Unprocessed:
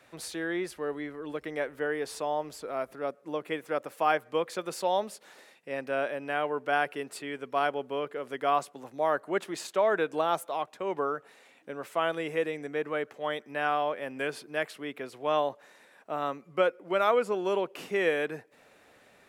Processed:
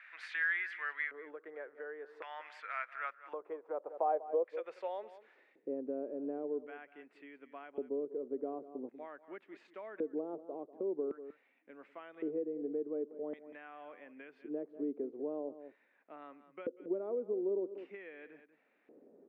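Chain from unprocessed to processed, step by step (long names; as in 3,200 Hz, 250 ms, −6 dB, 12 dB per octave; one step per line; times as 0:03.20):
auto-filter band-pass square 0.45 Hz 420–2,200 Hz
on a send: single-tap delay 191 ms −17 dB
on the sum: downward compressor 2.5 to 1, threshold −44 dBFS, peak gain reduction 13 dB
band-pass filter sweep 1,600 Hz → 260 Hz, 0:02.83–0:05.83
level +14 dB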